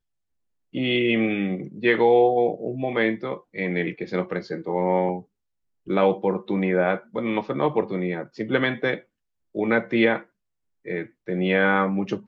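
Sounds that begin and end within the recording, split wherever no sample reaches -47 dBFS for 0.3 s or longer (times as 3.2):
0.73–5.23
5.86–9.02
9.55–10.24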